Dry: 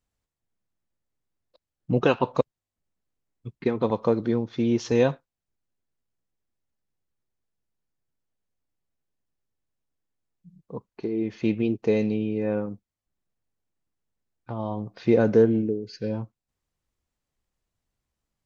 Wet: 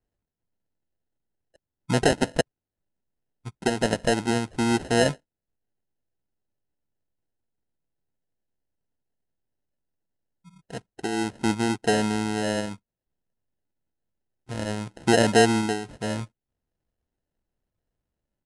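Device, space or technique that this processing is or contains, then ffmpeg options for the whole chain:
crushed at another speed: -af "asetrate=88200,aresample=44100,acrusher=samples=19:mix=1:aa=0.000001,asetrate=22050,aresample=44100"

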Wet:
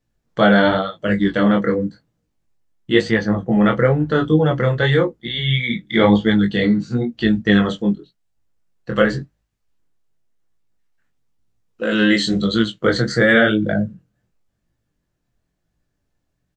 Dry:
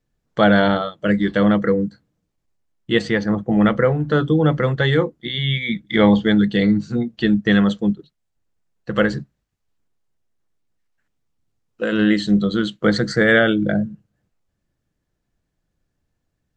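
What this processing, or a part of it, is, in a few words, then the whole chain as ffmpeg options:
double-tracked vocal: -filter_complex "[0:a]asettb=1/sr,asplit=3[link_01][link_02][link_03];[link_01]atrim=end=11.914[link_04];[link_02]atrim=start=11.91:end=12.63,asetpts=PTS-STARTPTS,afade=type=in:duration=0.004:curve=qsin,afade=type=out:start_time=0.716:duration=0.004:curve=qsin,highshelf=frequency=2400:gain=9[link_05];[link_03]atrim=start=12.626[link_06];[link_04][link_05]acrossfade=duration=0.004:curve1=hsin:curve2=qsin[link_07];[link_07][link_06]acrossfade=duration=0.004:curve1=qsin:curve2=hsin,asplit=2[link_08][link_09];[link_09]adelay=17,volume=-10.5dB[link_10];[link_08][link_10]amix=inputs=2:normalize=0,flanger=delay=18:depth=6.8:speed=0.95,volume=4dB"

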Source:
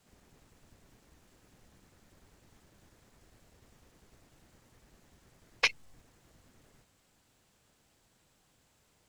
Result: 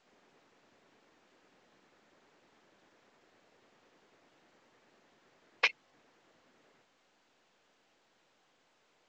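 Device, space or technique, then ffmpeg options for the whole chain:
telephone: -af "highpass=330,lowpass=3600" -ar 16000 -c:a pcm_mulaw

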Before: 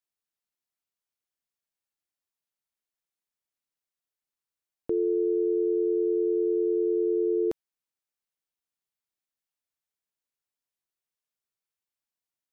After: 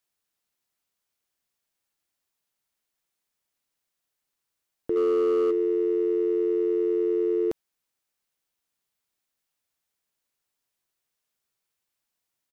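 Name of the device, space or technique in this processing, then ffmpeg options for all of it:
clipper into limiter: -filter_complex "[0:a]asplit=3[link_01][link_02][link_03];[link_01]afade=type=out:start_time=4.95:duration=0.02[link_04];[link_02]aecho=1:1:2:0.95,afade=type=in:start_time=4.95:duration=0.02,afade=type=out:start_time=5.5:duration=0.02[link_05];[link_03]afade=type=in:start_time=5.5:duration=0.02[link_06];[link_04][link_05][link_06]amix=inputs=3:normalize=0,asoftclip=type=hard:threshold=-20dB,alimiter=level_in=3.5dB:limit=-24dB:level=0:latency=1,volume=-3.5dB,volume=8.5dB"

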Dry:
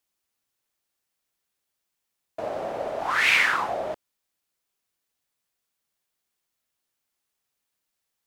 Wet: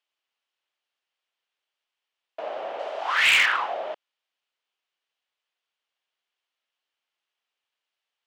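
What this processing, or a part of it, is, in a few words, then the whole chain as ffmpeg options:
megaphone: -filter_complex "[0:a]asettb=1/sr,asplit=3[link_01][link_02][link_03];[link_01]atrim=end=2.794[link_04];[link_02]atrim=start=2.79:end=3.46,asetpts=PTS-STARTPTS,afade=type=in:duration=0.004:curve=qsin,afade=type=out:start_time=0.666:duration=0.004:curve=qsin,bass=frequency=250:gain=-8,treble=frequency=4000:gain=8[link_05];[link_03]atrim=start=3.456[link_06];[link_04][link_05]acrossfade=duration=0.004:curve1=hsin:curve2=qsin[link_07];[link_07][link_06]acrossfade=duration=0.004:curve1=qsin:curve2=hsin,highpass=530,lowpass=3800,equalizer=frequency=3000:width_type=o:width=0.48:gain=7,asoftclip=type=hard:threshold=-13.5dB"

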